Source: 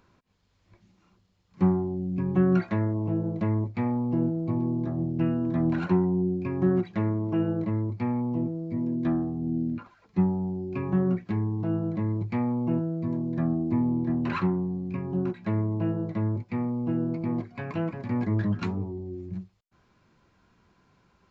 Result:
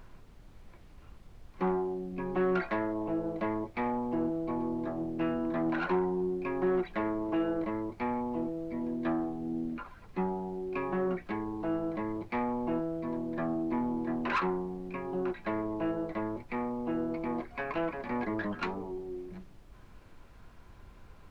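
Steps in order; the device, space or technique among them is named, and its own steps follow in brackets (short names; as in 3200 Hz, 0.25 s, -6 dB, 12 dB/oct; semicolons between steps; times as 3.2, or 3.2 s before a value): aircraft cabin announcement (BPF 450–3400 Hz; soft clip -26 dBFS, distortion -19 dB; brown noise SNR 17 dB); gain +4.5 dB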